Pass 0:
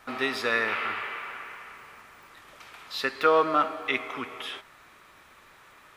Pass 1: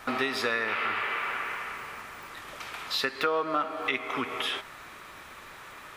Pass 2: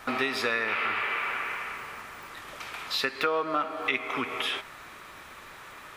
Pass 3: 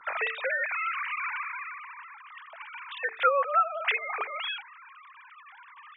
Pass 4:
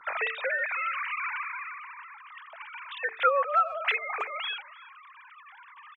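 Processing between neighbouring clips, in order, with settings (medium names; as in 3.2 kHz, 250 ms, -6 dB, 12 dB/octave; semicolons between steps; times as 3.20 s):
compression 4:1, threshold -35 dBFS, peak gain reduction 15.5 dB; trim +8 dB
dynamic bell 2.4 kHz, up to +4 dB, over -45 dBFS, Q 5.1
formants replaced by sine waves; hum notches 50/100/150/200/250/300/350/400/450 Hz
speakerphone echo 320 ms, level -21 dB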